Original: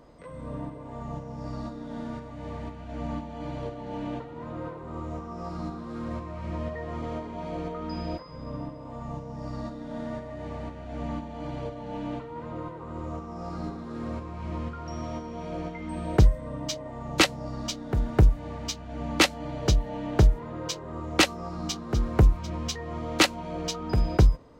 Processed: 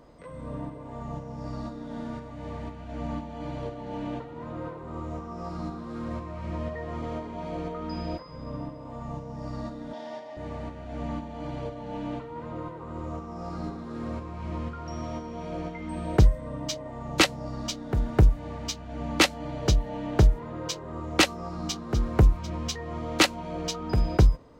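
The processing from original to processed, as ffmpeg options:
-filter_complex "[0:a]asettb=1/sr,asplit=3[a][b][c];[a]atrim=end=9.934[d];[b]atrim=start=9.93:end=10.37,asetpts=PTS-STARTPTS,afade=t=in:d=0.004:c=qsin,afade=t=out:st=0.436:d=0.004:c=qsin,highpass=420,equalizer=f=470:t=q:w=4:g=-4,equalizer=f=810:t=q:w=4:g=6,equalizer=f=1.3k:t=q:w=4:g=-9,equalizer=f=3.3k:t=q:w=4:g=6,equalizer=f=5.2k:t=q:w=4:g=8,equalizer=f=7.6k:t=q:w=4:g=-4,lowpass=f=8.8k:w=0.5412,lowpass=f=8.8k:w=1.3066[e];[c]atrim=start=10.366[f];[d][e]acrossfade=d=0.004:c1=hsin:c2=qsin[g];[g][f]acrossfade=d=0.004:c1=qsin:c2=hsin"

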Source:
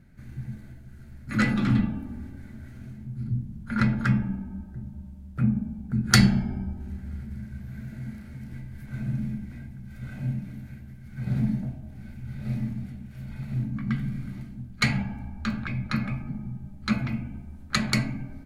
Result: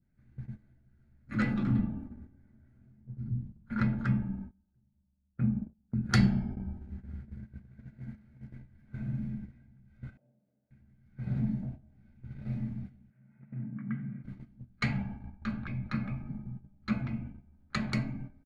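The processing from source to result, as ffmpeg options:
-filter_complex "[0:a]asettb=1/sr,asplit=3[a][b][c];[a]atrim=end=1.634[d];[b]atrim=start=1.63:end=3.32,asetpts=PTS-STARTPTS,afade=t=in:d=0.004:c=qsin,afade=t=out:st=1.686:d=0.004:c=qsin,equalizer=f=3.5k:w=0.65:g=-6[e];[c]atrim=start=3.316[f];[d][e]acrossfade=d=0.004:c1=hsin:c2=qsin[g];[g][f]acrossfade=d=0.004:c1=qsin:c2=hsin,asettb=1/sr,asplit=3[h][i][j];[h]atrim=end=4.514[k];[i]atrim=start=4.51:end=6.65,asetpts=PTS-STARTPTS,afade=t=in:d=0.004:c=qsin,afade=t=out:st=2.136:d=0.004:c=qsin,agate=range=-15dB:threshold=-32dB:ratio=16:release=100:detection=peak[l];[j]atrim=start=6.646[m];[k][l]acrossfade=d=0.004:c1=hsin:c2=qsin[n];[n][m]acrossfade=d=0.004:c1=qsin:c2=hsin,asplit=2[o][p];[p]afade=t=in:st=7.68:d=0.01,afade=t=out:st=8.15:d=0.01,aecho=0:1:410|820|1230|1640|2050|2460|2870|3280|3690|4100|4510|4920:0.334965|0.267972|0.214378|0.171502|0.137202|0.109761|0.0878092|0.0702473|0.0561979|0.0449583|0.0359666|0.0287733[q];[o][q]amix=inputs=2:normalize=0,asettb=1/sr,asplit=3[r][s][t];[r]atrim=end=10.174[u];[s]atrim=start=10.17:end=10.71,asetpts=PTS-STARTPTS,afade=t=in:d=0.004:c=qsin,afade=t=out:st=0.536:d=0.004:c=qsin,bandpass=f=550:t=q:w=4.2[v];[t]atrim=start=10.706[w];[u][v]acrossfade=d=0.004:c1=hsin:c2=qsin[x];[x][w]acrossfade=d=0.004:c1=qsin:c2=hsin,asettb=1/sr,asplit=3[y][z][aa];[y]atrim=end=13.104[ab];[z]atrim=start=13.1:end=14.24,asetpts=PTS-STARTPTS,afade=t=in:d=0.004:c=qsin,afade=t=out:st=1.136:d=0.004:c=qsin,highpass=f=140:w=0.5412,highpass=f=140:w=1.3066,equalizer=f=310:t=q:w=4:g=-6,equalizer=f=480:t=q:w=4:g=-6,equalizer=f=750:t=q:w=4:g=-5,equalizer=f=1.1k:t=q:w=4:g=-6,lowpass=f=2.1k:w=0.5412,lowpass=f=2.1k:w=1.3066[ac];[aa]atrim=start=14.236[ad];[ab][ac]acrossfade=d=0.004:c1=hsin:c2=qsin[ae];[ae][ad]acrossfade=d=0.004:c1=qsin:c2=hsin,aemphasis=mode=reproduction:type=75fm,agate=range=-13dB:threshold=-34dB:ratio=16:detection=peak,adynamicequalizer=threshold=0.00501:dfrequency=1800:dqfactor=0.88:tfrequency=1800:tqfactor=0.88:attack=5:release=100:ratio=0.375:range=2.5:mode=cutabove:tftype=bell,volume=-6.5dB"

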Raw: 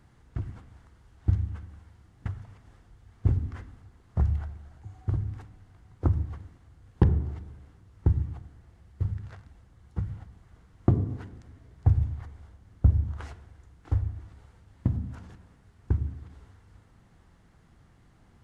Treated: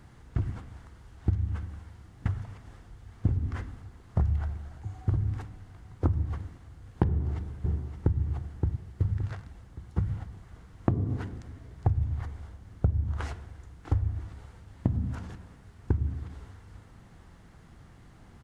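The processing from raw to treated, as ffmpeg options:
-filter_complex "[0:a]asplit=2[a][b];[b]afade=t=in:st=7.07:d=0.01,afade=t=out:st=8.19:d=0.01,aecho=0:1:570|1140|1710|2280:0.354813|0.124185|0.0434646|0.0152126[c];[a][c]amix=inputs=2:normalize=0,acompressor=threshold=-28dB:ratio=6,volume=6dB"

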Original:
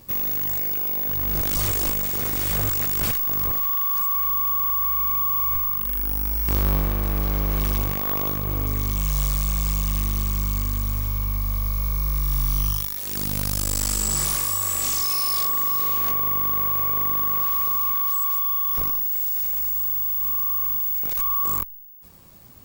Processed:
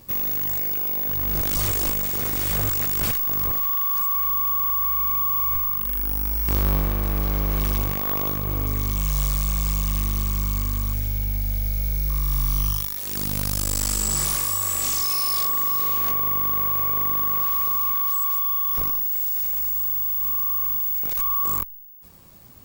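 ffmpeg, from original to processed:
-filter_complex "[0:a]asettb=1/sr,asplit=3[a][b][c];[a]atrim=end=10.934[d];[b]atrim=start=10.93:end=12.1,asetpts=PTS-STARTPTS,afade=t=in:d=0.004:c=qsin,afade=t=out:st=1.166:d=0.004:c=qsin,asuperstop=centerf=1100:order=4:qfactor=2.6[e];[c]atrim=start=12.096[f];[d][e]acrossfade=d=0.004:c1=hsin:c2=qsin[g];[g][f]acrossfade=d=0.004:c1=qsin:c2=hsin"

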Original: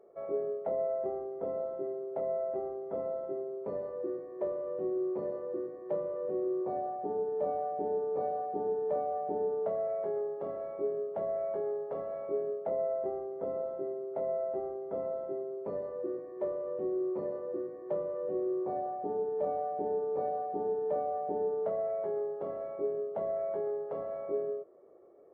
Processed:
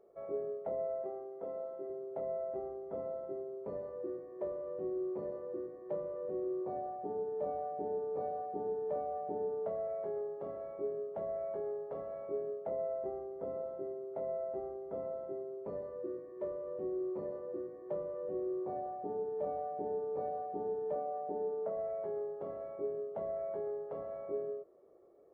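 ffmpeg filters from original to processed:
-filter_complex "[0:a]asettb=1/sr,asplit=3[a][b][c];[a]atrim=end=1.024[d];[b]atrim=start=1.02:end=1.9,asetpts=PTS-STARTPTS,afade=t=in:d=0.004:c=qsin,afade=t=out:st=0.876:d=0.004:c=qsin,highpass=f=340:p=1[e];[c]atrim=start=1.896[f];[d][e]acrossfade=d=0.004:c1=hsin:c2=qsin[g];[g][f]acrossfade=d=0.004:c1=qsin:c2=hsin,asettb=1/sr,asplit=3[h][i][j];[h]atrim=end=15.834[k];[i]atrim=start=15.83:end=16.76,asetpts=PTS-STARTPTS,afade=t=in:d=0.004:c=qsin,afade=t=out:st=0.926:d=0.004:c=qsin,bandreject=f=770:w=5.5[l];[j]atrim=start=16.756[m];[k][l]acrossfade=d=0.004:c1=hsin:c2=qsin[n];[n][m]acrossfade=d=0.004:c1=qsin:c2=hsin,asettb=1/sr,asplit=3[o][p][q];[o]atrim=end=20.954[r];[p]atrim=start=20.95:end=21.77,asetpts=PTS-STARTPTS,afade=t=in:d=0.004:c=qsin,afade=t=out:st=0.816:d=0.004:c=qsin,highpass=160,lowpass=2k[s];[q]atrim=start=21.766[t];[r][s]acrossfade=d=0.004:c1=hsin:c2=qsin[u];[u][t]acrossfade=d=0.004:c1=qsin:c2=hsin,lowshelf=f=89:g=10,volume=-5dB"

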